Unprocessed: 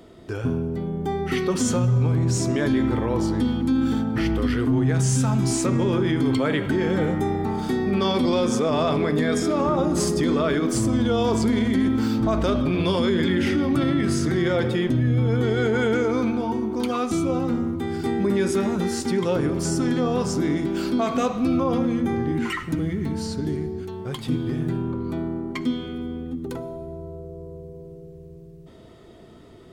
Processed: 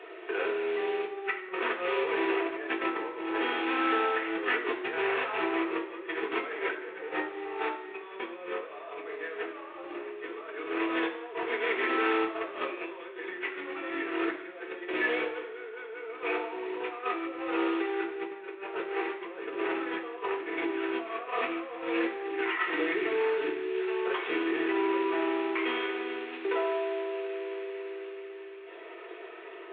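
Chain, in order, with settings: CVSD 16 kbps; elliptic high-pass 360 Hz, stop band 40 dB; limiter -19.5 dBFS, peak gain reduction 5.5 dB; negative-ratio compressor -34 dBFS, ratio -0.5; reverb RT60 0.95 s, pre-delay 3 ms, DRR 0 dB; core saturation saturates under 330 Hz; gain +3.5 dB

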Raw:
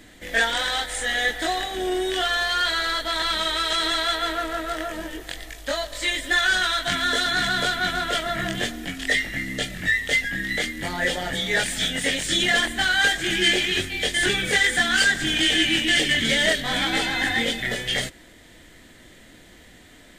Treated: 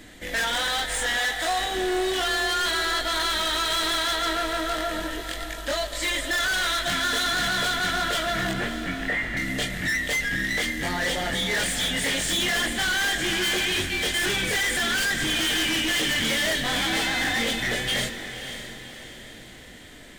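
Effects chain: hard clip -25 dBFS, distortion -7 dB; 1.17–1.61 resonant low shelf 540 Hz -6.5 dB, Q 1.5; 8.53–9.37 steep low-pass 2600 Hz; diffused feedback echo 0.56 s, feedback 47%, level -10 dB; gain +2 dB

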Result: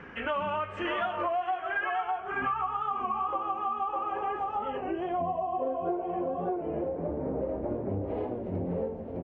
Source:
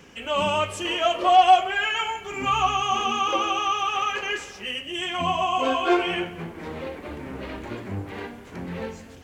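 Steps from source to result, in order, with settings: 7.89–8.68 resonant high shelf 2100 Hz +8.5 dB, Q 1.5; echo 0.606 s -5.5 dB; low-pass sweep 1600 Hz -> 600 Hz, 1.67–5.64; compressor 10:1, threshold -30 dBFS, peak gain reduction 21 dB; record warp 33 1/3 rpm, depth 100 cents; gain +2 dB

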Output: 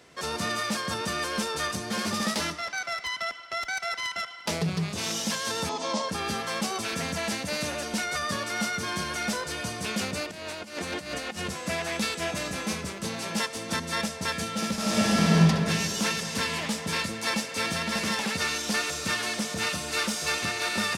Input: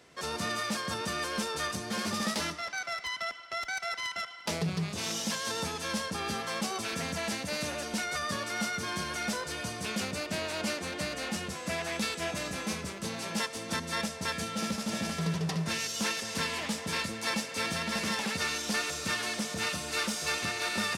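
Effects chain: 5.69–6.09 speaker cabinet 230–7200 Hz, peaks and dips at 260 Hz +7 dB, 630 Hz +9 dB, 950 Hz +9 dB, 1600 Hz -10 dB, 2600 Hz -5 dB; 10.31–11.5 negative-ratio compressor -38 dBFS, ratio -0.5; 14.74–15.36 reverb throw, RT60 3 s, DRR -7 dB; gain +3.5 dB

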